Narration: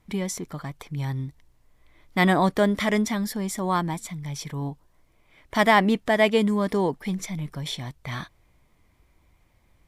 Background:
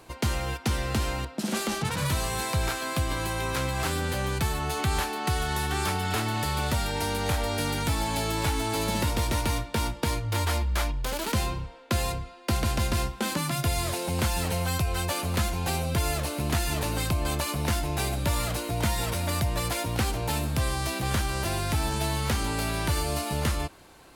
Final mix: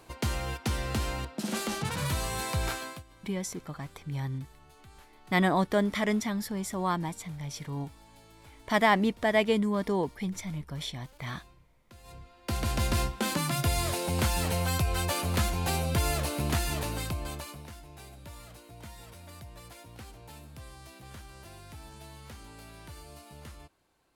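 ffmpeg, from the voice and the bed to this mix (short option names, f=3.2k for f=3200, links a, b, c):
-filter_complex "[0:a]adelay=3150,volume=-5dB[a];[1:a]volume=23dB,afade=t=out:st=2.74:d=0.29:silence=0.0630957,afade=t=in:st=12.03:d=0.88:silence=0.0473151,afade=t=out:st=16.38:d=1.32:silence=0.112202[b];[a][b]amix=inputs=2:normalize=0"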